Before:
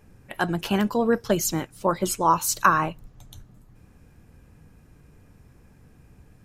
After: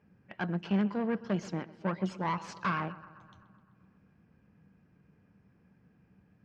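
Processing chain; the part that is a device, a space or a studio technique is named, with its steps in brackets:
analogue delay pedal into a guitar amplifier (bucket-brigade delay 128 ms, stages 4,096, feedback 64%, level −19 dB; tube saturation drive 20 dB, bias 0.75; loudspeaker in its box 100–4,500 Hz, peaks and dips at 190 Hz +10 dB, 1,600 Hz +3 dB, 3,800 Hz −8 dB)
level −7 dB

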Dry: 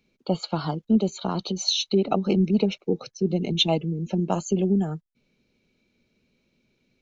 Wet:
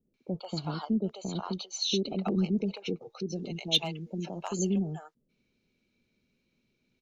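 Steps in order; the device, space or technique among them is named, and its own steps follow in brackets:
clipper into limiter (hard clipping −11 dBFS, distortion −32 dB; brickwall limiter −14.5 dBFS, peak gain reduction 3.5 dB)
0:03.17–0:04.59: tilt shelving filter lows −6 dB, about 680 Hz
multiband delay without the direct sound lows, highs 140 ms, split 620 Hz
level −5.5 dB

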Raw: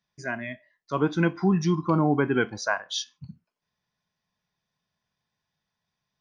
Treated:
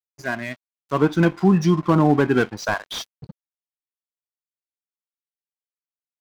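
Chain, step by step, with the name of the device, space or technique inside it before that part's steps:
early transistor amplifier (dead-zone distortion −44.5 dBFS; slew-rate limiting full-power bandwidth 77 Hz)
level +6.5 dB

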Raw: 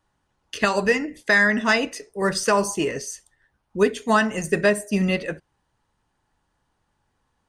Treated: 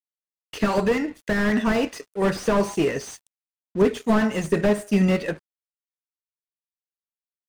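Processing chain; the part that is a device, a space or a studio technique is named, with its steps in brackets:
early transistor amplifier (dead-zone distortion −47.5 dBFS; slew-rate limiting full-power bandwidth 61 Hz)
level +3 dB

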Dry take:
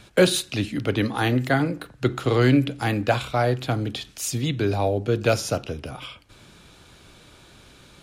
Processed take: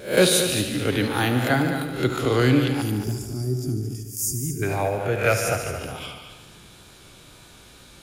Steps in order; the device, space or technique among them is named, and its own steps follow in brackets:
peak hold with a rise ahead of every peak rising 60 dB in 0.37 s
0:03.80–0:05.79: octave-band graphic EQ 250/2,000/4,000 Hz −7/+10/−11 dB
0:02.81–0:04.63: gain on a spectral selection 440–4,600 Hz −27 dB
high-shelf EQ 8,500 Hz +10.5 dB
multi-head tape echo (echo machine with several playback heads 73 ms, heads all three, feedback 42%, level −11.5 dB; tape wow and flutter 24 cents)
level −1.5 dB

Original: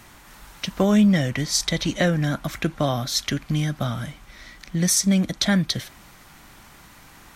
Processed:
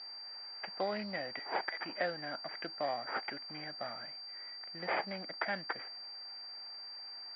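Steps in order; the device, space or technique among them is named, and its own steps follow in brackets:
0:01.39–0:01.80: high-pass filter 1,100 Hz 12 dB per octave
toy sound module (linearly interpolated sample-rate reduction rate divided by 8×; switching amplifier with a slow clock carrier 4,700 Hz; loudspeaker in its box 640–4,200 Hz, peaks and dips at 780 Hz +4 dB, 1,100 Hz −6 dB, 2,000 Hz +4 dB, 4,000 Hz −4 dB)
level −8 dB

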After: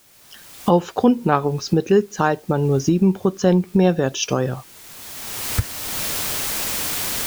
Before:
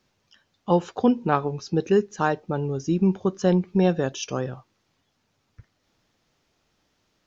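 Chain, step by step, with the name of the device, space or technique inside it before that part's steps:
cheap recorder with automatic gain (white noise bed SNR 33 dB; camcorder AGC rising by 24 dB per second)
level +4 dB

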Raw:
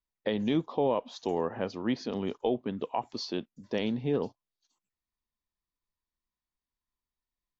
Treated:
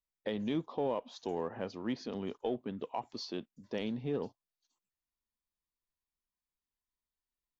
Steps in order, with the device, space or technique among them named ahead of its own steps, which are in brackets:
parallel distortion (in parallel at −13 dB: hard clipping −31.5 dBFS, distortion −6 dB)
on the sum: level −7 dB

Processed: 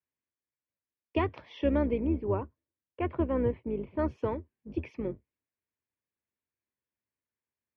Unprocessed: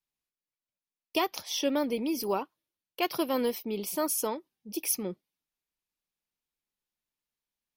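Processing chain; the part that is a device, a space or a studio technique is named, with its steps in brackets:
0:02.00–0:03.99: high-frequency loss of the air 480 metres
sub-octave bass pedal (sub-octave generator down 2 octaves, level +3 dB; loudspeaker in its box 80–2,100 Hz, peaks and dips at 170 Hz −9 dB, 780 Hz −9 dB, 1,300 Hz −7 dB)
level +2 dB

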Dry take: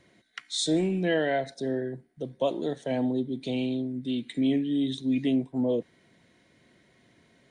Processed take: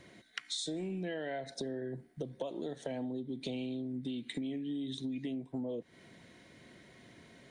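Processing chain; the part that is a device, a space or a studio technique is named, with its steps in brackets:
serial compression, peaks first (downward compressor, threshold −35 dBFS, peak gain reduction 13.5 dB; downward compressor 2.5 to 1, threshold −42 dBFS, peak gain reduction 7.5 dB)
level +4.5 dB

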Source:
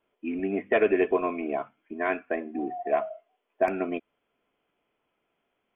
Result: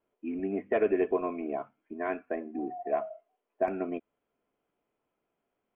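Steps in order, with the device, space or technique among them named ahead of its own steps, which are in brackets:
through cloth (high-shelf EQ 2,100 Hz −13.5 dB)
level −3 dB

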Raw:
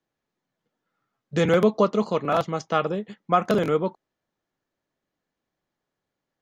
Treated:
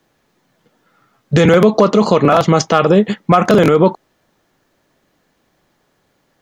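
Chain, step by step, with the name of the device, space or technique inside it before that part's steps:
loud club master (downward compressor 2 to 1, threshold −21 dBFS, peak gain reduction 4.5 dB; hard clipping −14 dBFS, distortion −28 dB; boost into a limiter +22.5 dB)
level −1 dB

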